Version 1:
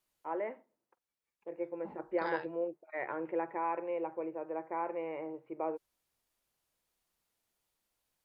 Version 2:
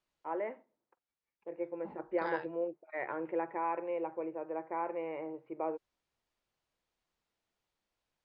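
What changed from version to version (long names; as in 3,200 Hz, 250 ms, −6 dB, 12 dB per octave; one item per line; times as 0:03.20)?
second voice: add high-frequency loss of the air 98 metres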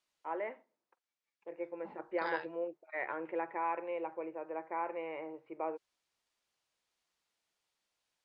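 master: add spectral tilt +2.5 dB per octave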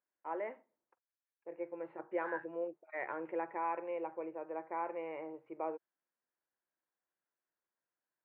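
second voice: add resonant band-pass 1,600 Hz, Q 5.7
master: add high-frequency loss of the air 350 metres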